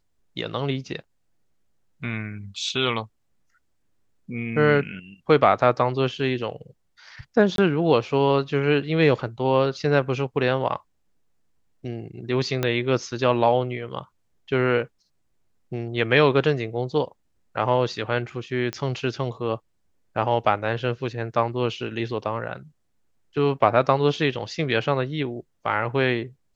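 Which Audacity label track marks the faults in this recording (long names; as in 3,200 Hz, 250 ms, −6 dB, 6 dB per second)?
7.560000	7.580000	drop-out 22 ms
12.630000	12.630000	click −9 dBFS
18.730000	18.730000	click −14 dBFS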